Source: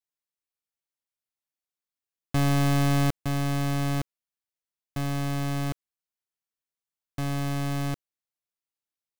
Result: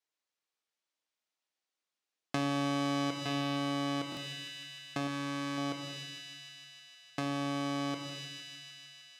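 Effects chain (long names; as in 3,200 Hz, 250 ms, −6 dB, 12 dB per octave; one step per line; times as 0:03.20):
band-pass filter 280–6,200 Hz
on a send: delay with a high-pass on its return 153 ms, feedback 80%, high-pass 2,600 Hz, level −8 dB
on the sum: rectangular room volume 350 cubic metres, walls mixed, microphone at 0.57 metres
downward compressor 2.5 to 1, threshold −39 dBFS, peak gain reduction 11.5 dB
buffer that repeats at 0:04.10, samples 1,024, times 2
0:05.07–0:05.58: saturating transformer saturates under 650 Hz
level +5 dB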